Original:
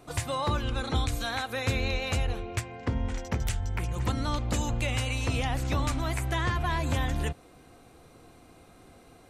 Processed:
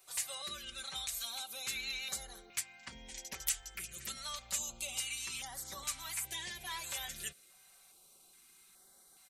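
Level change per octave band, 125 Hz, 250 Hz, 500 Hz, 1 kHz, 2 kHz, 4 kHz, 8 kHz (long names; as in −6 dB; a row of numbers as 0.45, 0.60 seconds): −30.5, −26.0, −21.5, −16.0, −10.0, −3.5, +3.0 decibels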